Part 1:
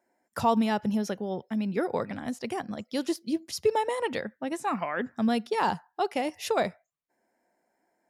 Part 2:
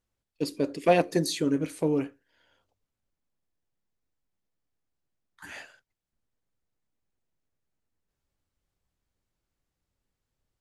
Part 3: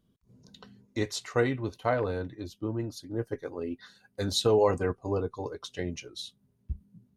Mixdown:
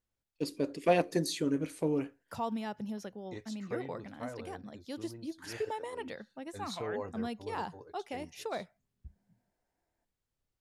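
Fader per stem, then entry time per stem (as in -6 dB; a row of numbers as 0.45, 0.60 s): -11.5, -5.0, -15.5 dB; 1.95, 0.00, 2.35 s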